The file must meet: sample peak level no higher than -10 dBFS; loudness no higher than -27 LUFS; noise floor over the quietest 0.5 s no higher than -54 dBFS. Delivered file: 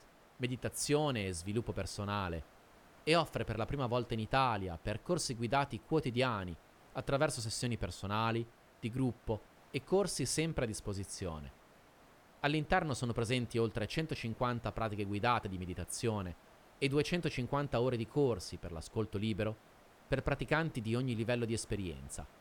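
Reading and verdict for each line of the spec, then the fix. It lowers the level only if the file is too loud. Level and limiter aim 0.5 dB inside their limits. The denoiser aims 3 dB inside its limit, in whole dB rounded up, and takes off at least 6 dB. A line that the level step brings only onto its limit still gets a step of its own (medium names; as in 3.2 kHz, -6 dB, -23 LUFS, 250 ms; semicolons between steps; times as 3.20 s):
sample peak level -14.5 dBFS: pass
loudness -36.0 LUFS: pass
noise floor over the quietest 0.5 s -62 dBFS: pass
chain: none needed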